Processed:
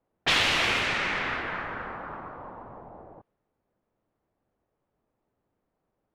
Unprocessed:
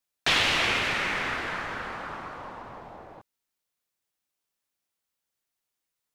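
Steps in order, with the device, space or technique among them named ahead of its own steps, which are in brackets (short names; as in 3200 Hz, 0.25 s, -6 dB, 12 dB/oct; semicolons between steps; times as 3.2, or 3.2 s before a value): cassette deck with a dynamic noise filter (white noise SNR 32 dB; low-pass opened by the level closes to 620 Hz, open at -21.5 dBFS)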